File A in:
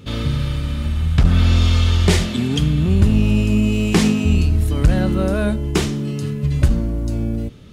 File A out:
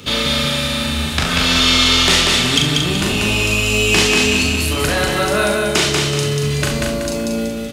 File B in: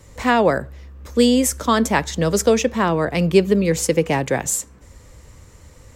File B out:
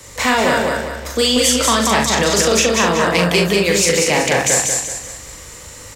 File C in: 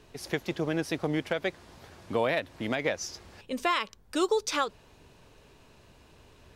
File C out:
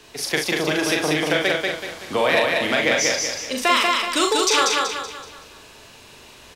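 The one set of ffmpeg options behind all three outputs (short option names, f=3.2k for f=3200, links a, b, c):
-filter_complex "[0:a]acrossover=split=180|510|5500[a][b][c][d];[a]acompressor=threshold=-27dB:ratio=4[e];[b]acompressor=threshold=-29dB:ratio=4[f];[c]acompressor=threshold=-25dB:ratio=4[g];[d]acompressor=threshold=-41dB:ratio=4[h];[e][f][g][h]amix=inputs=4:normalize=0,asplit=2[i][j];[j]aecho=0:1:40|68:0.631|0.266[k];[i][k]amix=inputs=2:normalize=0,acontrast=87,lowshelf=f=200:g=-10,asplit=2[l][m];[m]aecho=0:1:189|378|567|756|945:0.708|0.29|0.119|0.0488|0.02[n];[l][n]amix=inputs=2:normalize=0,asoftclip=type=tanh:threshold=-7dB,crystalizer=i=5.5:c=0,aemphasis=mode=reproduction:type=50kf"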